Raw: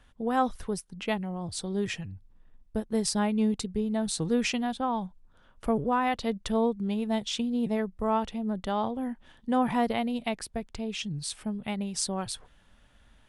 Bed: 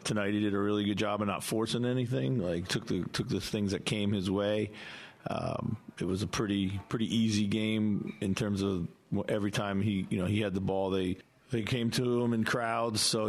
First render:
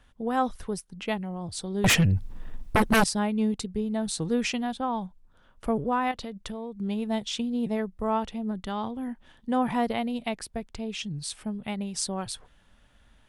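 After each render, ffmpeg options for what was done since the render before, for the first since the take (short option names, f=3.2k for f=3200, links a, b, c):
-filter_complex "[0:a]asettb=1/sr,asplit=3[a][b][c];[a]atrim=end=1.844[d];[b]atrim=start=1.84:end=3.04,asetpts=PTS-STARTPTS,afade=t=in:d=0.004:c=qsin,afade=t=out:st=1.196:d=0.004:c=qsin,aeval=exprs='0.158*sin(PI/2*6.31*val(0)/0.158)':c=same[e];[c]atrim=start=3.036[f];[d][e]acrossfade=d=0.004:c1=hsin:c2=qsin[g];[g][f]acrossfade=d=0.004:c1=qsin:c2=hsin,asettb=1/sr,asplit=3[h][i][j];[h]atrim=end=6.114[k];[i]atrim=start=6.11:end=6.78,asetpts=PTS-STARTPTS,afade=t=in:d=0.004:c=qsin,afade=t=out:st=0.666:d=0.004:c=qsin,acompressor=threshold=-32dB:ratio=6:attack=3.2:release=140:knee=1:detection=peak[l];[j]atrim=start=6.776[m];[k][l]acrossfade=d=0.004:c1=hsin:c2=qsin[n];[n][m]acrossfade=d=0.004:c1=qsin:c2=hsin,asettb=1/sr,asplit=3[o][p][q];[o]atrim=end=8.514[r];[p]atrim=start=8.51:end=9.08,asetpts=PTS-STARTPTS,afade=t=in:d=0.004:c=qsin,afade=t=out:st=0.566:d=0.004:c=qsin,equalizer=f=600:w=1.5:g=-7[s];[q]atrim=start=9.076[t];[r][s]acrossfade=d=0.004:c1=hsin:c2=qsin[u];[u][t]acrossfade=d=0.004:c1=qsin:c2=hsin"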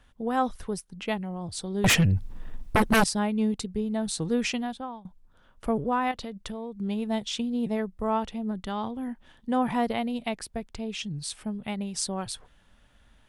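-filter_complex "[0:a]asplit=2[a][b];[a]atrim=end=5.05,asetpts=PTS-STARTPTS,afade=t=out:st=4.56:d=0.49:silence=0.0794328[c];[b]atrim=start=5.05,asetpts=PTS-STARTPTS,afade=t=in:d=0.004:c=hsin:silence=0.0794328[d];[c][d]concat=n=2:v=0:a=1"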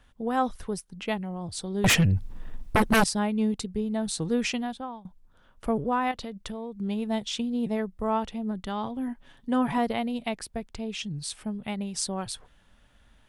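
-filter_complex "[0:a]asettb=1/sr,asplit=3[a][b][c];[a]atrim=end=8.854[d];[b]atrim=start=8.85:end=9.78,asetpts=PTS-STARTPTS,afade=t=in:d=0.004:c=qsin,afade=t=out:st=0.926:d=0.004:c=qsin,aecho=1:1:7.2:0.5,atrim=end_sample=41013[e];[c]atrim=start=9.776[f];[d][e]acrossfade=d=0.004:c1=hsin:c2=qsin[g];[g][f]acrossfade=d=0.004:c1=qsin:c2=hsin"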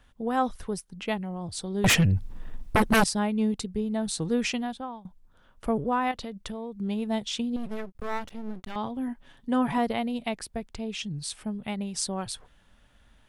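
-filter_complex "[0:a]asettb=1/sr,asplit=3[a][b][c];[a]atrim=end=7.564[d];[b]atrim=start=7.56:end=8.76,asetpts=PTS-STARTPTS,afade=t=in:d=0.004:c=qsin,afade=t=out:st=1.196:d=0.004:c=qsin,aeval=exprs='max(val(0),0)':c=same[e];[c]atrim=start=8.756[f];[d][e]acrossfade=d=0.004:c1=hsin:c2=qsin[g];[g][f]acrossfade=d=0.004:c1=qsin:c2=hsin"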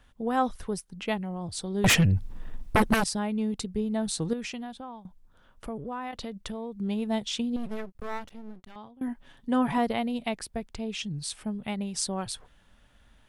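-filter_complex "[0:a]asettb=1/sr,asplit=3[a][b][c];[a]atrim=end=2.944[d];[b]atrim=start=2.94:end=3.72,asetpts=PTS-STARTPTS,afade=t=in:d=0.004:c=qsin,afade=t=out:st=0.776:d=0.004:c=qsin,acompressor=threshold=-27dB:ratio=2:attack=3.2:release=140:knee=1:detection=peak[e];[c]atrim=start=3.716[f];[d][e]acrossfade=d=0.004:c1=hsin:c2=qsin[g];[g][f]acrossfade=d=0.004:c1=qsin:c2=hsin,asettb=1/sr,asplit=3[h][i][j];[h]atrim=end=4.334[k];[i]atrim=start=4.33:end=6.13,asetpts=PTS-STARTPTS,afade=t=in:d=0.004:c=qsin,afade=t=out:st=1.796:d=0.004:c=qsin,acompressor=threshold=-39dB:ratio=2:attack=3.2:release=140:knee=1:detection=peak[l];[j]atrim=start=6.126[m];[k][l]acrossfade=d=0.004:c1=hsin:c2=qsin[n];[n][m]acrossfade=d=0.004:c1=qsin:c2=hsin,asplit=2[o][p];[o]atrim=end=9.01,asetpts=PTS-STARTPTS,afade=t=out:st=7.68:d=1.33:silence=0.0749894[q];[p]atrim=start=9.01,asetpts=PTS-STARTPTS,afade=t=in:d=0.004:c=hsin:silence=0.0749894[r];[q][r]concat=n=2:v=0:a=1"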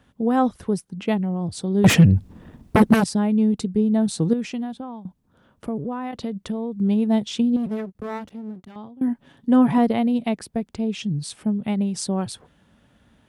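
-af "highpass=71,equalizer=f=210:w=0.39:g=10.5"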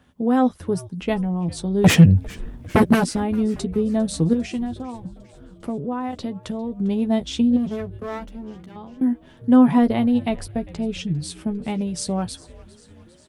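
-filter_complex "[0:a]asplit=2[a][b];[b]adelay=12,volume=-8dB[c];[a][c]amix=inputs=2:normalize=0,asplit=7[d][e][f][g][h][i][j];[e]adelay=401,afreqshift=-140,volume=-21dB[k];[f]adelay=802,afreqshift=-280,volume=-24.7dB[l];[g]adelay=1203,afreqshift=-420,volume=-28.5dB[m];[h]adelay=1604,afreqshift=-560,volume=-32.2dB[n];[i]adelay=2005,afreqshift=-700,volume=-36dB[o];[j]adelay=2406,afreqshift=-840,volume=-39.7dB[p];[d][k][l][m][n][o][p]amix=inputs=7:normalize=0"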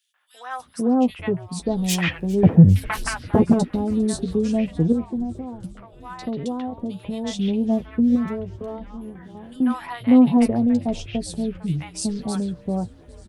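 -filter_complex "[0:a]acrossover=split=920|3100[a][b][c];[b]adelay=140[d];[a]adelay=590[e];[e][d][c]amix=inputs=3:normalize=0"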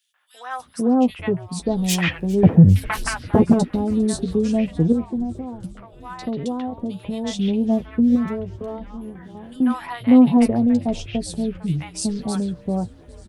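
-af "volume=1.5dB,alimiter=limit=-2dB:level=0:latency=1"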